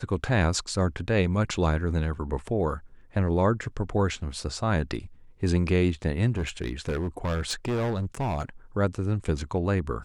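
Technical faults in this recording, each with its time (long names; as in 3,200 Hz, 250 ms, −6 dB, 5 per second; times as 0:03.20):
0:06.36–0:08.43: clipping −24 dBFS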